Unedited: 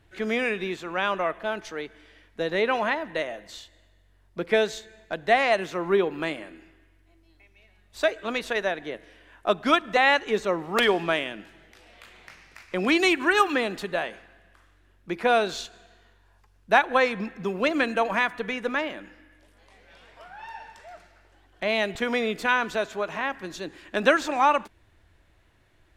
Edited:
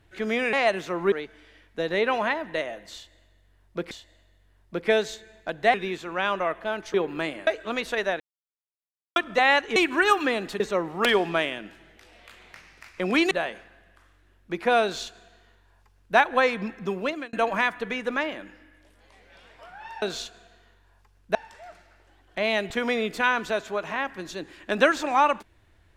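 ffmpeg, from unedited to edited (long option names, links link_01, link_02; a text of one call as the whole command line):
ffmpeg -i in.wav -filter_complex "[0:a]asplit=15[link_01][link_02][link_03][link_04][link_05][link_06][link_07][link_08][link_09][link_10][link_11][link_12][link_13][link_14][link_15];[link_01]atrim=end=0.532[link_16];[link_02]atrim=start=5.378:end=5.972[link_17];[link_03]atrim=start=1.728:end=4.522[link_18];[link_04]atrim=start=3.548:end=5.382[link_19];[link_05]atrim=start=0.528:end=1.732[link_20];[link_06]atrim=start=5.968:end=6.502[link_21];[link_07]atrim=start=8.048:end=8.78,asetpts=PTS-STARTPTS,afade=type=out:start_time=0.728:duration=0.004:curve=hsin[link_22];[link_08]atrim=start=8.78:end=9.74,asetpts=PTS-STARTPTS,volume=0[link_23];[link_09]atrim=start=9.74:end=10.342,asetpts=PTS-STARTPTS,afade=type=in:duration=0.004:curve=hsin[link_24];[link_10]atrim=start=13.048:end=13.892[link_25];[link_11]atrim=start=10.338:end=13.052[link_26];[link_12]atrim=start=13.888:end=17.91,asetpts=PTS-STARTPTS,afade=type=out:start_time=3.612:duration=0.41[link_27];[link_13]atrim=start=17.91:end=20.602,asetpts=PTS-STARTPTS,afade=type=in:duration=0.004:curve=hsin[link_28];[link_14]atrim=start=15.408:end=16.742[link_29];[link_15]atrim=start=20.598[link_30];[link_16][link_17]acrossfade=duration=0.004:curve1=hsin:curve2=hsin[link_31];[link_31][link_18]acrossfade=duration=0.004:curve1=hsin:curve2=hsin[link_32];[link_32][link_19]acrossfade=duration=0.004:curve1=hsin:curve2=hsin[link_33];[link_33][link_20]acrossfade=duration=0.004:curve1=hsin:curve2=hsin[link_34];[link_34][link_21]acrossfade=duration=0.004:curve1=hsin:curve2=hsin[link_35];[link_22][link_23][link_24]concat=n=3:v=0:a=1[link_36];[link_35][link_36]acrossfade=duration=0.004:curve1=hsin:curve2=hsin[link_37];[link_37][link_25]acrossfade=duration=0.004:curve1=hsin:curve2=hsin[link_38];[link_38][link_26]acrossfade=duration=0.004:curve1=hsin:curve2=hsin[link_39];[link_27][link_28]concat=n=2:v=0:a=1[link_40];[link_39][link_40]acrossfade=duration=0.004:curve1=hsin:curve2=hsin[link_41];[link_41][link_29]acrossfade=duration=0.004:curve1=hsin:curve2=hsin[link_42];[link_42][link_30]acrossfade=duration=0.004:curve1=hsin:curve2=hsin" out.wav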